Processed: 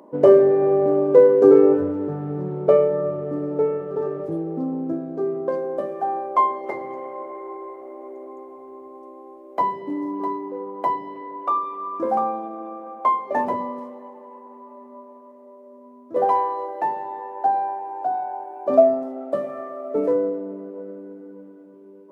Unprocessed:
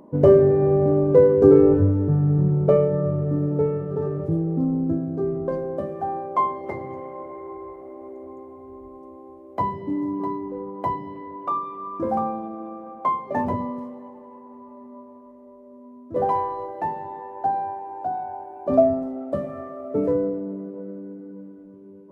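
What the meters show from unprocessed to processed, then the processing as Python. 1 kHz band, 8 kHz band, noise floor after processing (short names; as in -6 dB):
+3.5 dB, n/a, -46 dBFS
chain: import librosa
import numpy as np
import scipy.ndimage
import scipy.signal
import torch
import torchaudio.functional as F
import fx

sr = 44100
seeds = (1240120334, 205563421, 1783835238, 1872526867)

y = scipy.signal.sosfilt(scipy.signal.butter(2, 360.0, 'highpass', fs=sr, output='sos'), x)
y = y * librosa.db_to_amplitude(3.5)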